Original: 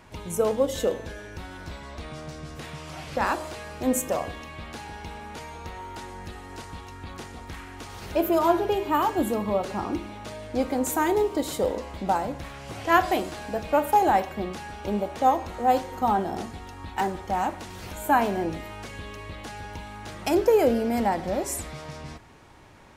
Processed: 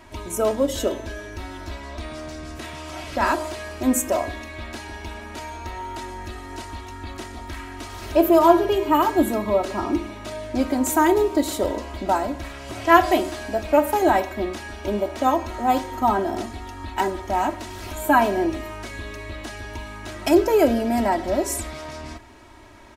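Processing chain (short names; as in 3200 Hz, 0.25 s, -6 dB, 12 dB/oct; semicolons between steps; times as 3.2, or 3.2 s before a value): comb 3.1 ms, depth 77%; gain +2.5 dB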